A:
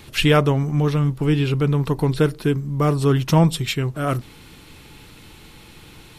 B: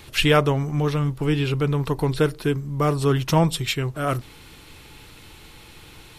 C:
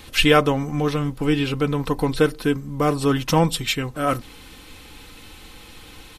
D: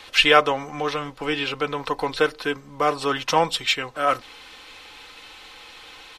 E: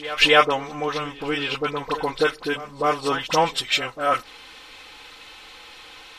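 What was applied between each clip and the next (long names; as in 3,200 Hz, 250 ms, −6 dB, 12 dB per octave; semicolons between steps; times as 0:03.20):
parametric band 200 Hz −5.5 dB 1.3 octaves
comb filter 3.9 ms, depth 50%; level +1.5 dB
three-way crossover with the lows and the highs turned down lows −18 dB, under 470 Hz, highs −15 dB, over 6,400 Hz; level +3 dB
all-pass dispersion highs, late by 45 ms, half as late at 1,100 Hz; echo ahead of the sound 262 ms −16 dB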